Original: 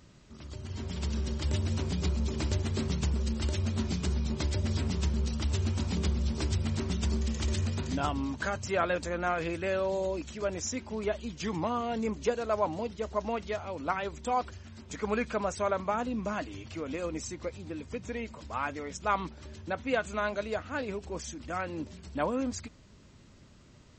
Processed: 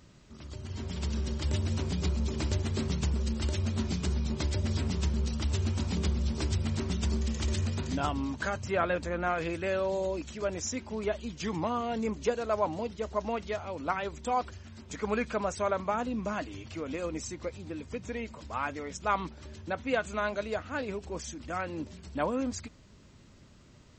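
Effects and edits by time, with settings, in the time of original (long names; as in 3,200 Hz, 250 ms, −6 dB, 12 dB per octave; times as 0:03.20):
0:08.61–0:09.29: bass and treble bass +2 dB, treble −7 dB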